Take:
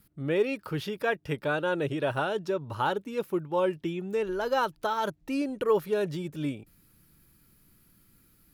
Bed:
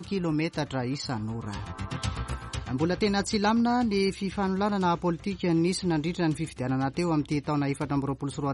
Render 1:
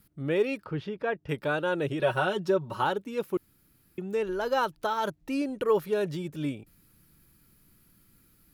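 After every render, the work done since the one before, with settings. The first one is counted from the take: 0.64–1.29 s: tape spacing loss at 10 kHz 25 dB; 1.99–2.84 s: comb 5.4 ms, depth 81%; 3.37–3.98 s: room tone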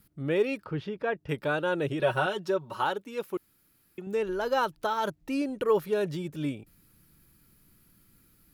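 2.26–4.07 s: bass shelf 300 Hz -9 dB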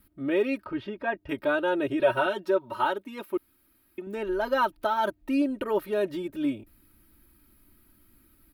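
peaking EQ 6.5 kHz -10.5 dB 1.1 oct; comb 3.2 ms, depth 88%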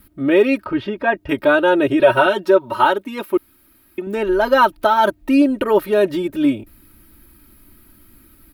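trim +11.5 dB; peak limiter -2 dBFS, peak gain reduction 2 dB

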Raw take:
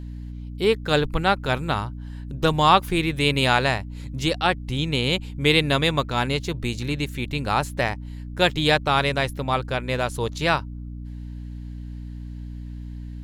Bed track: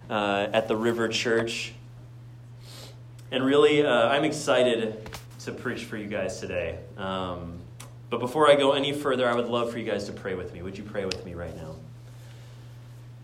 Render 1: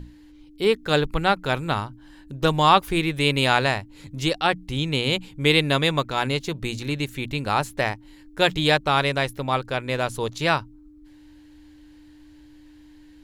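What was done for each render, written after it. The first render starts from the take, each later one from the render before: hum notches 60/120/180/240 Hz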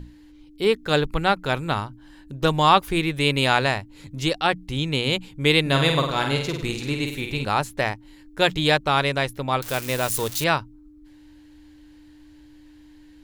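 5.61–7.45 s: flutter echo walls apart 8.6 m, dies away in 0.6 s; 9.62–10.44 s: zero-crossing glitches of -19.5 dBFS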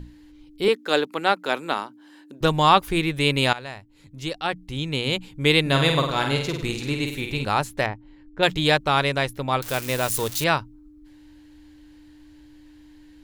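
0.68–2.41 s: high-pass 240 Hz 24 dB/octave; 3.53–5.46 s: fade in, from -17.5 dB; 7.86–8.43 s: tape spacing loss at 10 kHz 30 dB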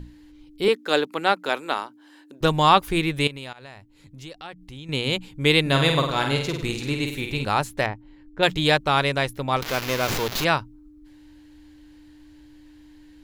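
1.49–2.43 s: peaking EQ 170 Hz -8 dB 1.1 oct; 3.27–4.89 s: compression 2.5:1, threshold -40 dBFS; 9.56–10.45 s: sliding maximum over 5 samples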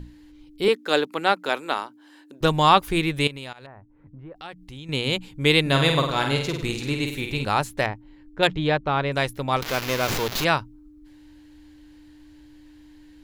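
3.66–4.36 s: low-pass 1.5 kHz 24 dB/octave; 8.47–9.12 s: tape spacing loss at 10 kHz 28 dB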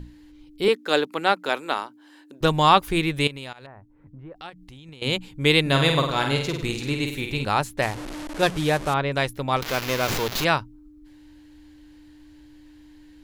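4.49–5.02 s: compression 20:1, threshold -39 dBFS; 7.82–8.94 s: one-bit delta coder 64 kbps, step -28 dBFS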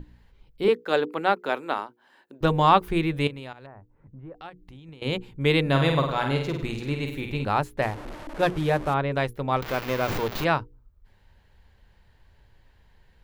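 peaking EQ 7.9 kHz -12.5 dB 2.7 oct; hum notches 60/120/180/240/300/360/420/480 Hz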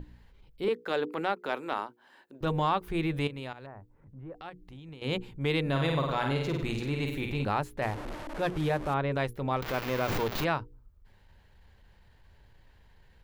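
compression 4:1, threshold -24 dBFS, peak gain reduction 11 dB; transient shaper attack -6 dB, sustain 0 dB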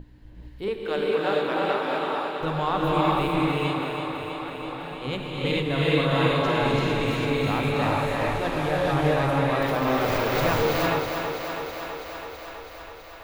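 on a send: thinning echo 327 ms, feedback 77%, high-pass 170 Hz, level -6.5 dB; on the sum: gated-style reverb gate 480 ms rising, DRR -5 dB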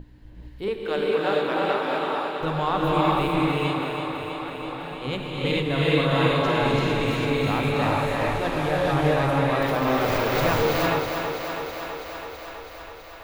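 trim +1 dB

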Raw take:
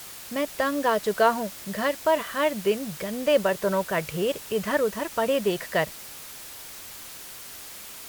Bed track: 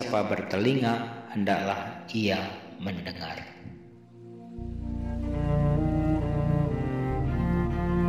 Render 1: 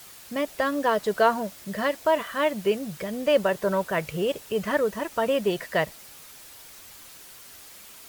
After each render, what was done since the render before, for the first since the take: noise reduction 6 dB, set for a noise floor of -42 dBFS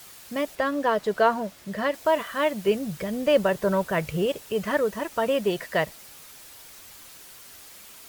0.55–1.94 s: treble shelf 5.5 kHz -7.5 dB; 2.68–4.26 s: bass shelf 190 Hz +7 dB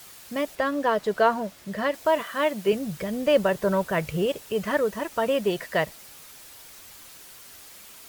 2.21–2.73 s: high-pass 140 Hz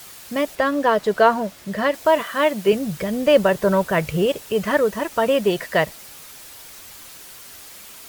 trim +5.5 dB

